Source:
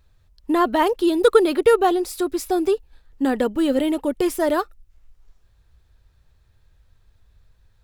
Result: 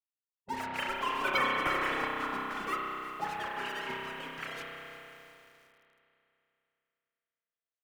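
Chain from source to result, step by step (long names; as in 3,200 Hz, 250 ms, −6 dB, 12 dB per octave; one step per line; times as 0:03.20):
three sine waves on the formant tracks
low-pass filter 2,800 Hz
comb filter 7.5 ms, depth 48%
leveller curve on the samples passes 1
0:03.94–0:04.57: downward compressor 1.5 to 1, threshold −31 dBFS, peak gain reduction 5.5 dB
gate on every frequency bin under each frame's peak −25 dB weak
0:02.30–0:02.73: frequency shifter −48 Hz
spring reverb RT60 3 s, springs 31 ms, chirp 70 ms, DRR −2.5 dB
feedback echo at a low word length 348 ms, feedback 55%, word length 9 bits, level −13.5 dB
level +3.5 dB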